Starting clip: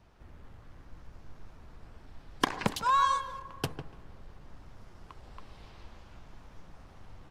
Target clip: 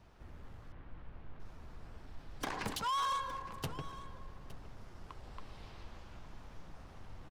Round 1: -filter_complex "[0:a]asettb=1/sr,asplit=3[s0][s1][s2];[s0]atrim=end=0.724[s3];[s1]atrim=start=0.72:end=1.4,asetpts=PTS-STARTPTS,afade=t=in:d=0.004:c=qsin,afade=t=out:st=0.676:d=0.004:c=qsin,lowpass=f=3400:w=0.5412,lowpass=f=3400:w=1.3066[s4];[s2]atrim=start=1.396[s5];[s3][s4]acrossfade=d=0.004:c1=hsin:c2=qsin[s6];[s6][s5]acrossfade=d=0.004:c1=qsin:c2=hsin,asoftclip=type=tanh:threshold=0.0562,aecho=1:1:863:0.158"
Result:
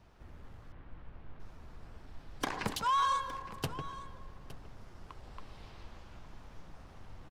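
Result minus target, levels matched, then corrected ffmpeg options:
saturation: distortion -5 dB
-filter_complex "[0:a]asettb=1/sr,asplit=3[s0][s1][s2];[s0]atrim=end=0.724[s3];[s1]atrim=start=0.72:end=1.4,asetpts=PTS-STARTPTS,afade=t=in:d=0.004:c=qsin,afade=t=out:st=0.676:d=0.004:c=qsin,lowpass=f=3400:w=0.5412,lowpass=f=3400:w=1.3066[s4];[s2]atrim=start=1.396[s5];[s3][s4]acrossfade=d=0.004:c1=hsin:c2=qsin[s6];[s6][s5]acrossfade=d=0.004:c1=qsin:c2=hsin,asoftclip=type=tanh:threshold=0.0251,aecho=1:1:863:0.158"

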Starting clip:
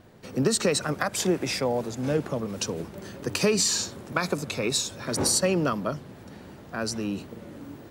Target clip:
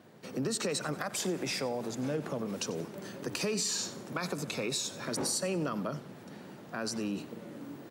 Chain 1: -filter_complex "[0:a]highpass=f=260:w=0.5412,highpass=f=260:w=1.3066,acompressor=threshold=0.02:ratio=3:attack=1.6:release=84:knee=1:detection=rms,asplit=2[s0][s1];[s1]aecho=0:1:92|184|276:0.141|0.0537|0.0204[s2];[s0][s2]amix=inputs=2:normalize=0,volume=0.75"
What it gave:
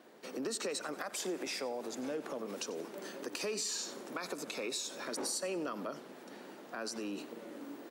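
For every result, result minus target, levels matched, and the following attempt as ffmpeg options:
125 Hz band -12.0 dB; compression: peak gain reduction +4.5 dB
-filter_complex "[0:a]highpass=f=130:w=0.5412,highpass=f=130:w=1.3066,acompressor=threshold=0.02:ratio=3:attack=1.6:release=84:knee=1:detection=rms,asplit=2[s0][s1];[s1]aecho=0:1:92|184|276:0.141|0.0537|0.0204[s2];[s0][s2]amix=inputs=2:normalize=0,volume=0.75"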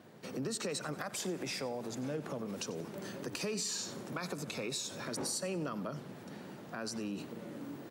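compression: peak gain reduction +4.5 dB
-filter_complex "[0:a]highpass=f=130:w=0.5412,highpass=f=130:w=1.3066,acompressor=threshold=0.0447:ratio=3:attack=1.6:release=84:knee=1:detection=rms,asplit=2[s0][s1];[s1]aecho=0:1:92|184|276:0.141|0.0537|0.0204[s2];[s0][s2]amix=inputs=2:normalize=0,volume=0.75"

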